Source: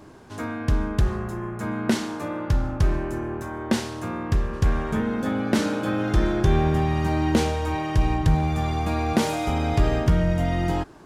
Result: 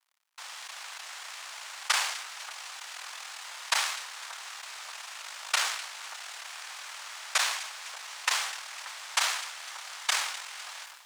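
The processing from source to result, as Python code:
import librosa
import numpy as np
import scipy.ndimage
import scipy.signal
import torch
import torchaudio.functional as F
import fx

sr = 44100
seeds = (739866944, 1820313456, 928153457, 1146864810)

p1 = fx.noise_vocoder(x, sr, seeds[0], bands=1)
p2 = fx.level_steps(p1, sr, step_db=18)
p3 = p2 + fx.echo_split(p2, sr, split_hz=1700.0, low_ms=582, high_ms=252, feedback_pct=52, wet_db=-13.5, dry=0)
p4 = np.sign(p3) * np.maximum(np.abs(p3) - 10.0 ** (-46.5 / 20.0), 0.0)
p5 = scipy.signal.sosfilt(scipy.signal.butter(4, 820.0, 'highpass', fs=sr, output='sos'), p4)
p6 = fx.high_shelf(p5, sr, hz=3200.0, db=-8.5)
y = fx.sustainer(p6, sr, db_per_s=59.0)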